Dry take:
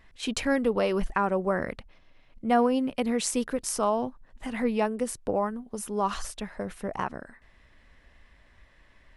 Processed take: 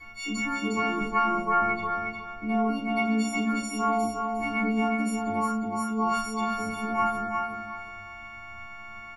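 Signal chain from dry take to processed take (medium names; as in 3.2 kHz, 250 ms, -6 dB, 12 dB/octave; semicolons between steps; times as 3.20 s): partials quantised in pitch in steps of 4 st; rippled EQ curve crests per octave 1.8, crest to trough 14 dB; peak limiter -14.5 dBFS, peak gain reduction 9 dB; compression 2:1, threshold -43 dBFS, peak gain reduction 13 dB; feedback comb 100 Hz, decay 0.18 s, harmonics all, mix 100%; feedback delay 358 ms, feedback 25%, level -4.5 dB; reverberation RT60 0.45 s, pre-delay 3 ms, DRR -3.5 dB; trim +5.5 dB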